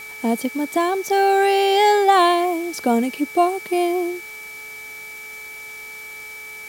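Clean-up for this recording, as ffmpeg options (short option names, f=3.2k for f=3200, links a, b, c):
-af "adeclick=t=4,bandreject=f=432.2:t=h:w=4,bandreject=f=864.4:t=h:w=4,bandreject=f=1.2966k:t=h:w=4,bandreject=f=1.7288k:t=h:w=4,bandreject=f=2.161k:t=h:w=4,bandreject=f=2.3k:w=30,afwtdn=0.0071"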